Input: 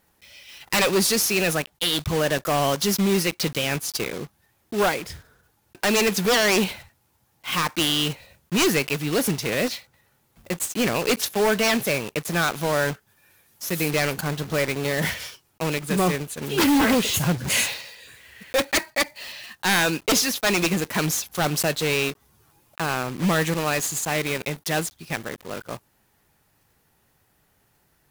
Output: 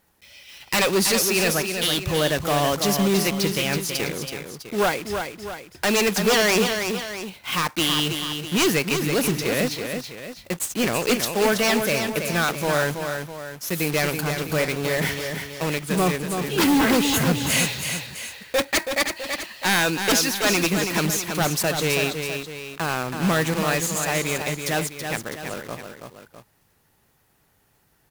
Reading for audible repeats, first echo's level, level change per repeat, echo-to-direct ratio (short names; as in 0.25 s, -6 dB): 2, -6.5 dB, -6.0 dB, -5.5 dB